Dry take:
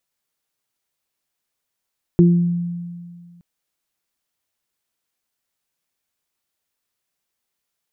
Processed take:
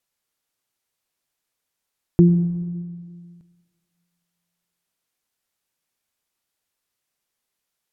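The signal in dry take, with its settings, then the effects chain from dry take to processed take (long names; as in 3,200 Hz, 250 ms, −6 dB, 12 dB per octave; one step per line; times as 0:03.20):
harmonic partials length 1.22 s, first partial 173 Hz, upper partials −3 dB, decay 1.98 s, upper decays 0.48 s, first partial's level −8 dB
treble cut that deepens with the level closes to 690 Hz, closed at −21.5 dBFS
dense smooth reverb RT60 1.7 s, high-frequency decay 0.75×, pre-delay 80 ms, DRR 13.5 dB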